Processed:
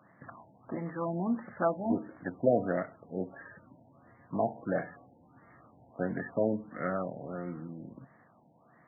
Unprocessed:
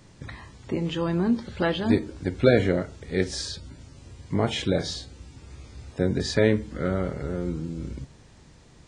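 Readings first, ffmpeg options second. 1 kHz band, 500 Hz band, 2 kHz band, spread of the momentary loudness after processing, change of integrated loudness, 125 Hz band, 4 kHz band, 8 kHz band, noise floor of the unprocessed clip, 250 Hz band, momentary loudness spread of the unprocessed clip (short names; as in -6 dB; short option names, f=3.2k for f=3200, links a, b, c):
-1.0 dB, -6.5 dB, -9.5 dB, 18 LU, -7.5 dB, -12.5 dB, under -40 dB, under -40 dB, -52 dBFS, -8.5 dB, 21 LU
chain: -af "highpass=f=140:w=0.5412,highpass=f=140:w=1.3066,equalizer=f=150:t=q:w=4:g=-4,equalizer=f=400:t=q:w=4:g=-8,equalizer=f=690:t=q:w=4:g=10,equalizer=f=1.2k:t=q:w=4:g=9,equalizer=f=1.8k:t=q:w=4:g=10,equalizer=f=2.7k:t=q:w=4:g=-10,lowpass=f=8.7k:w=0.5412,lowpass=f=8.7k:w=1.3066,afftfilt=real='re*lt(b*sr/1024,930*pow(2300/930,0.5+0.5*sin(2*PI*1.5*pts/sr)))':imag='im*lt(b*sr/1024,930*pow(2300/930,0.5+0.5*sin(2*PI*1.5*pts/sr)))':win_size=1024:overlap=0.75,volume=-7dB"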